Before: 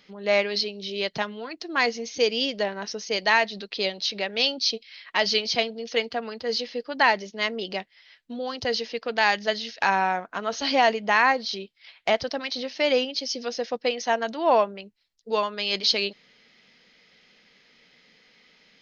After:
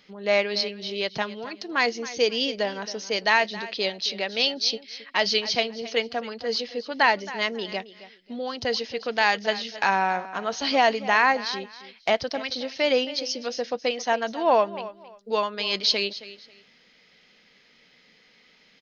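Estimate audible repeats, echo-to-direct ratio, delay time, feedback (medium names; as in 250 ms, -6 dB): 2, -16.0 dB, 270 ms, 24%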